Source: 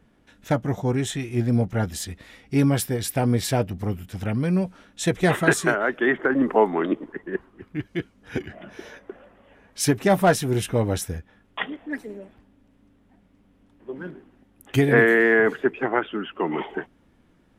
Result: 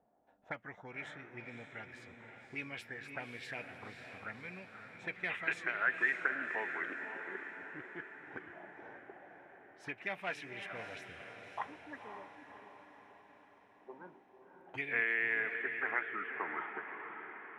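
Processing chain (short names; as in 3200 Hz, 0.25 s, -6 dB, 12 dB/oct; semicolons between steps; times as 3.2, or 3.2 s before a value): tilt -2 dB/oct; auto-wah 710–2400 Hz, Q 5.5, up, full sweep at -14 dBFS; diffused feedback echo 0.548 s, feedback 56%, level -7 dB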